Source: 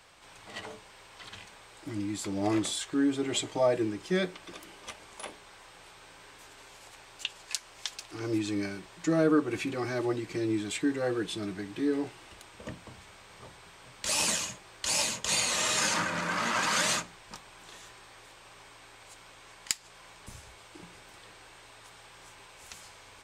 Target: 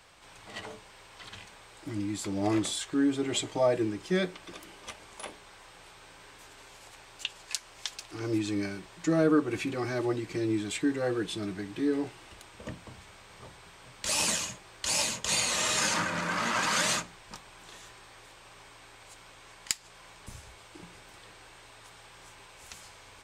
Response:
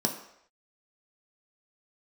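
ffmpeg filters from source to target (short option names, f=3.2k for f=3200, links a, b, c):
-af "lowshelf=f=140:g=3"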